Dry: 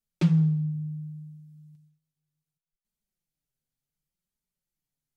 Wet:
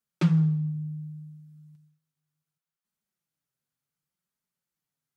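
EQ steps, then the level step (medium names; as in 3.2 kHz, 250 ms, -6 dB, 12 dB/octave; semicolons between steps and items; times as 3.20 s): high-pass 95 Hz; peaking EQ 1.3 kHz +6.5 dB 1 oct; 0.0 dB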